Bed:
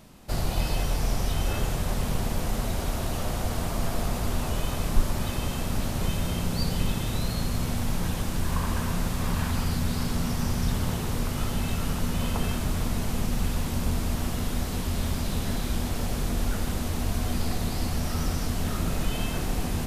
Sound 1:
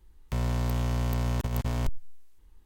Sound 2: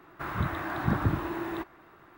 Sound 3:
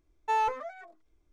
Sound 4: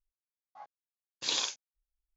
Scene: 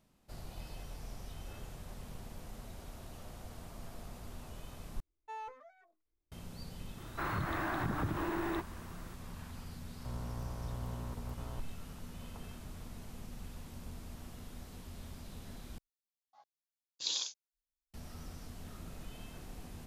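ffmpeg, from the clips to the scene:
-filter_complex "[0:a]volume=-20dB[a];[2:a]acompressor=threshold=-30dB:ratio=6:attack=3.2:release=140:knee=1:detection=peak[b];[1:a]highshelf=f=1.8k:t=q:w=1.5:g=-11.5[c];[4:a]highshelf=f=2.9k:t=q:w=1.5:g=8[d];[a]asplit=3[e][f][g];[e]atrim=end=5.004[h];[3:a]atrim=end=1.32,asetpts=PTS-STARTPTS,volume=-17.5dB[i];[f]atrim=start=6.316:end=15.784[j];[d]atrim=end=2.16,asetpts=PTS-STARTPTS,volume=-13dB[k];[g]atrim=start=17.936[l];[b]atrim=end=2.17,asetpts=PTS-STARTPTS,volume=-1dB,afade=t=in:d=0.004:c=hsin,afade=t=out:st=2.166:d=0.004:c=hsin,adelay=307818S[m];[c]atrim=end=2.65,asetpts=PTS-STARTPTS,volume=-14dB,afade=t=in:d=0.004:c=hsin,afade=t=out:st=2.646:d=0.004:c=hsin,adelay=9730[n];[h][i]acrossfade=d=0.004:c1=hsin:c2=hsin[o];[o][j]acrossfade=d=0.004:c1=hsin:c2=hsin[p];[p][k]acrossfade=d=0.004:c1=hsin:c2=hsin[q];[q][l]acrossfade=d=0.004:c1=hsin:c2=hsin[r];[r][m][n]amix=inputs=3:normalize=0"

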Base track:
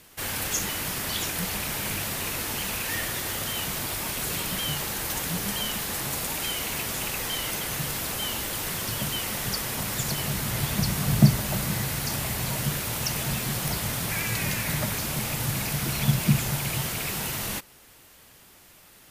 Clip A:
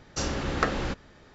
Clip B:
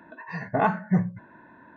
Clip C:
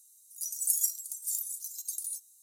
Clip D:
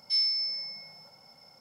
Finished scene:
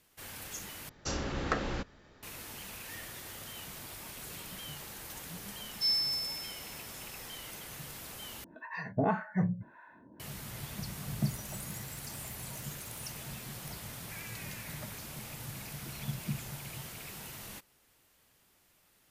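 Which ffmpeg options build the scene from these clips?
-filter_complex "[0:a]volume=-15dB[a];[1:a]acontrast=72[b];[2:a]acrossover=split=650[c][d];[c]aeval=exprs='val(0)*(1-1/2+1/2*cos(2*PI*1.8*n/s))':c=same[e];[d]aeval=exprs='val(0)*(1-1/2-1/2*cos(2*PI*1.8*n/s))':c=same[f];[e][f]amix=inputs=2:normalize=0[g];[3:a]acompressor=threshold=-44dB:ratio=6:attack=3.2:release=140:knee=1:detection=peak[h];[a]asplit=3[i][j][k];[i]atrim=end=0.894[l];[b]atrim=end=1.34,asetpts=PTS-STARTPTS,volume=-12dB[m];[j]atrim=start=2.226:end=8.444[n];[g]atrim=end=1.76,asetpts=PTS-STARTPTS,volume=-0.5dB[o];[k]atrim=start=10.196[p];[4:a]atrim=end=1.6,asetpts=PTS-STARTPTS,volume=-3dB,afade=t=in:d=0.004:c=hsin,afade=t=out:st=1.596:d=0.004:c=hsin,adelay=5710[q];[h]atrim=end=2.42,asetpts=PTS-STARTPTS,volume=-1.5dB,afade=t=in:d=0.004:c=hsin,afade=t=out:st=2.416:d=0.004:c=hsin,adelay=10930[r];[l][m]acrossfade=d=0.004:c1=hsin:c2=hsin[s];[s][n]acrossfade=d=0.004:c1=hsin:c2=hsin[t];[t][o]acrossfade=d=0.004:c1=hsin:c2=hsin[u];[u][p]acrossfade=d=0.004:c1=hsin:c2=hsin[v];[v][q][r]amix=inputs=3:normalize=0"

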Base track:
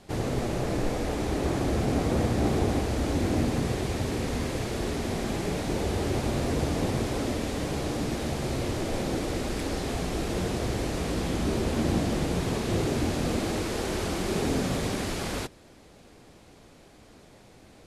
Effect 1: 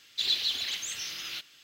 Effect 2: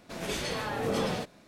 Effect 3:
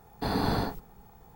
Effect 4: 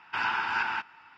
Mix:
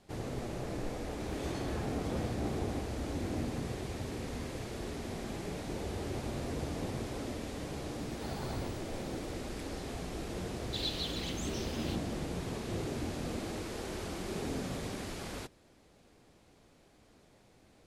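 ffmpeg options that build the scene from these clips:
-filter_complex "[0:a]volume=-10dB[a];[2:a]acompressor=threshold=-31dB:ratio=6:attack=3.2:release=140:knee=1:detection=peak[b];[3:a]aphaser=in_gain=1:out_gain=1:delay=3:decay=0.5:speed=1.5:type=triangular[c];[b]atrim=end=1.47,asetpts=PTS-STARTPTS,volume=-11.5dB,afade=t=in:d=0.004:c=hsin,afade=t=out:st=1.466:d=0.004:c=hsin,adelay=1100[d];[c]atrim=end=1.35,asetpts=PTS-STARTPTS,volume=-15.5dB,afade=t=in:d=0.004:c=hsin,afade=t=out:st=1.346:d=0.004:c=hsin,adelay=7990[e];[1:a]atrim=end=1.63,asetpts=PTS-STARTPTS,volume=-9.5dB,afade=t=in:d=0.004:c=hsin,afade=t=out:st=1.626:d=0.004:c=hsin,adelay=10550[f];[a][d][e][f]amix=inputs=4:normalize=0"

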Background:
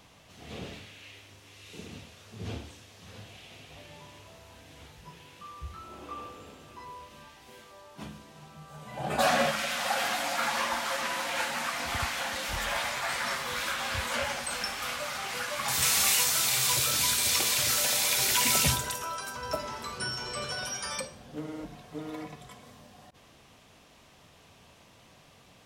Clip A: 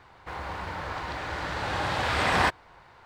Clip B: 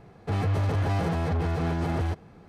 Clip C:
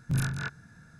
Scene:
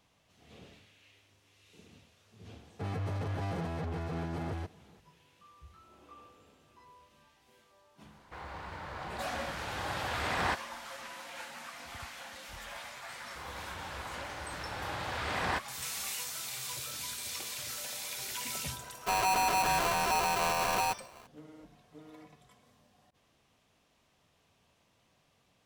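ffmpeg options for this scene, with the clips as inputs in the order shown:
-filter_complex "[2:a]asplit=2[a][b];[1:a]asplit=2[c][d];[0:a]volume=-13.5dB[e];[a]highpass=84[f];[b]aeval=exprs='val(0)*sgn(sin(2*PI*850*n/s))':c=same[g];[f]atrim=end=2.48,asetpts=PTS-STARTPTS,volume=-8.5dB,afade=t=in:d=0.004:c=hsin,afade=t=out:st=2.476:d=0.004:c=hsin,adelay=2520[h];[c]atrim=end=3.05,asetpts=PTS-STARTPTS,volume=-8.5dB,afade=t=in:d=0.004:c=hsin,afade=t=out:st=3.046:d=0.004:c=hsin,adelay=8050[i];[d]atrim=end=3.05,asetpts=PTS-STARTPTS,volume=-9.5dB,afade=t=in:d=0.004:c=hsin,afade=t=out:st=3.046:d=0.004:c=hsin,adelay=13090[j];[g]atrim=end=2.48,asetpts=PTS-STARTPTS,volume=-3.5dB,afade=t=in:d=0.004:c=hsin,afade=t=out:st=2.476:d=0.004:c=hsin,adelay=18790[k];[e][h][i][j][k]amix=inputs=5:normalize=0"

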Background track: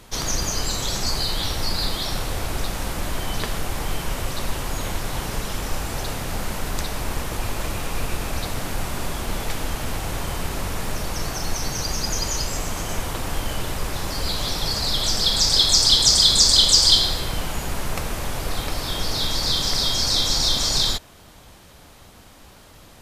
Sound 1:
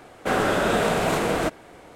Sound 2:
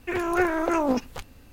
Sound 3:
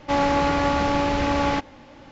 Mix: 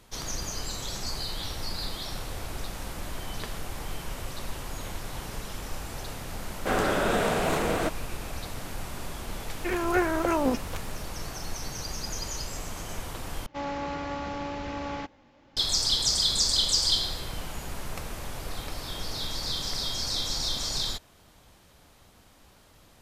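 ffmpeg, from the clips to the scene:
-filter_complex "[0:a]volume=-9.5dB,asplit=2[a][b];[a]atrim=end=13.464[c];[3:a]atrim=end=2.11,asetpts=PTS-STARTPTS,volume=-12.5dB[d];[b]atrim=start=15.566[e];[1:a]atrim=end=1.95,asetpts=PTS-STARTPTS,volume=-4dB,afade=t=in:d=0.004:c=hsin,afade=t=out:st=1.946:d=0.004:c=hsin,adelay=6400[f];[2:a]atrim=end=1.52,asetpts=PTS-STARTPTS,volume=-2dB,afade=t=in:d=0.004:c=hsin,afade=t=out:st=1.516:d=0.004:c=hsin,adelay=9570[g];[c][d]acrossfade=d=0.004:c1=hsin:c2=hsin[h];[h][e]acrossfade=d=0.004:c1=hsin:c2=hsin[i];[i][f][g]amix=inputs=3:normalize=0"

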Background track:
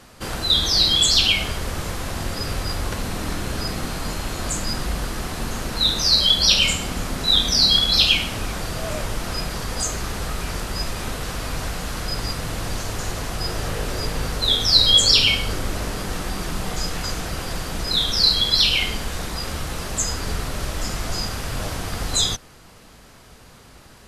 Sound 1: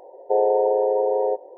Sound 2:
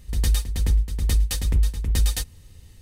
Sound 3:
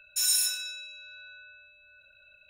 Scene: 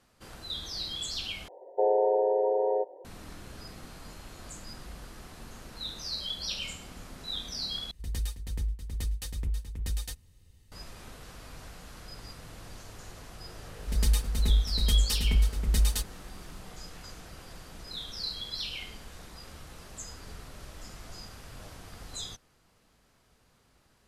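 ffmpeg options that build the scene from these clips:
-filter_complex "[2:a]asplit=2[a][b];[0:a]volume=-19dB[c];[b]aecho=1:1:4.7:0.72[d];[c]asplit=3[e][f][g];[e]atrim=end=1.484[h];[1:a]atrim=end=1.57,asetpts=PTS-STARTPTS,volume=-5.5dB[i];[f]atrim=start=3.046:end=7.914[j];[a]atrim=end=2.81,asetpts=PTS-STARTPTS,volume=-12dB[k];[g]atrim=start=10.716[l];[d]atrim=end=2.81,asetpts=PTS-STARTPTS,volume=-5.5dB,afade=t=in:d=0.004:c=hsin,afade=t=out:st=2.806:d=0.004:c=hsin,adelay=13790[m];[h][i]acrossfade=d=0.004:c1=hsin:c2=hsin[n];[n][j]acrossfade=d=0.004:c1=hsin:c2=hsin[o];[o][k]acrossfade=d=0.004:c1=hsin:c2=hsin[p];[p][l]acrossfade=d=0.004:c1=hsin:c2=hsin[q];[q][m]amix=inputs=2:normalize=0"

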